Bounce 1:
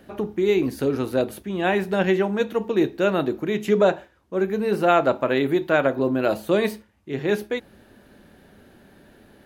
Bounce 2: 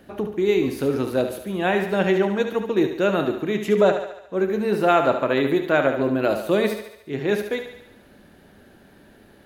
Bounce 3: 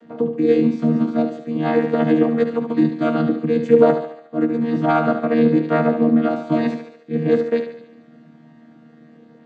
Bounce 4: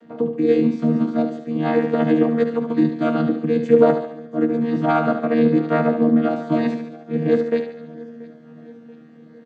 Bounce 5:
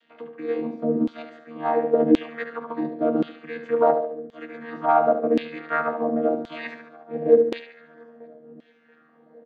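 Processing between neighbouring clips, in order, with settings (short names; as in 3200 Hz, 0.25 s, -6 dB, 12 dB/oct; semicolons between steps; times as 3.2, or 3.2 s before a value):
thinning echo 72 ms, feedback 58%, high-pass 280 Hz, level -8 dB
chord vocoder bare fifth, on D#3; gain +4.5 dB
feedback echo 0.682 s, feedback 57%, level -22 dB; gain -1 dB
LFO band-pass saw down 0.93 Hz 340–3400 Hz; gain +4.5 dB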